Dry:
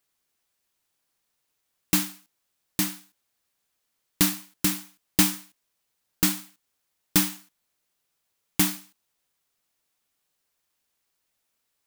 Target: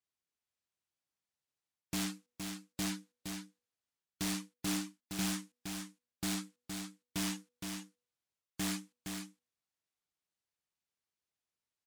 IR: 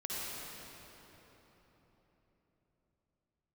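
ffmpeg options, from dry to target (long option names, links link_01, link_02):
-af "lowpass=8700,afftdn=noise_reduction=20:noise_floor=-47,highpass=63,lowshelf=frequency=140:gain=8,bandreject=frequency=243.5:width_type=h:width=4,bandreject=frequency=487:width_type=h:width=4,areverse,acompressor=threshold=-29dB:ratio=10,areverse,asoftclip=type=hard:threshold=-38dB,aecho=1:1:466:0.501,volume=4.5dB"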